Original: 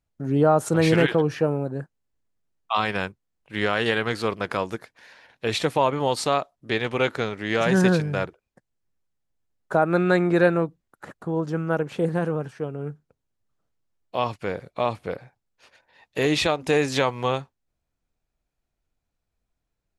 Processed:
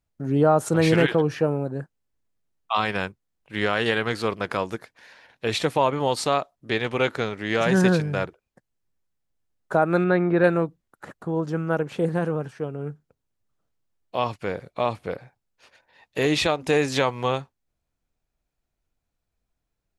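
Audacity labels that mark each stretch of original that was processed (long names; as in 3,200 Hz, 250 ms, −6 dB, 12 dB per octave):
10.040000	10.440000	high-frequency loss of the air 310 metres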